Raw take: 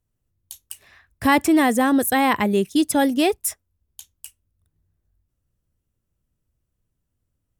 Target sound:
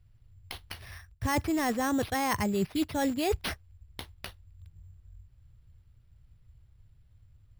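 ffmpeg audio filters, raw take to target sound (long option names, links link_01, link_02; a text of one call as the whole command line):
ffmpeg -i in.wav -filter_complex "[0:a]acrossover=split=5200[link_01][link_02];[link_02]acompressor=threshold=-37dB:ratio=4:attack=1:release=60[link_03];[link_01][link_03]amix=inputs=2:normalize=0,lowshelf=frequency=160:width_type=q:width=1.5:gain=13,areverse,acompressor=threshold=-29dB:ratio=10,areverse,acrusher=samples=6:mix=1:aa=0.000001,volume=3.5dB" out.wav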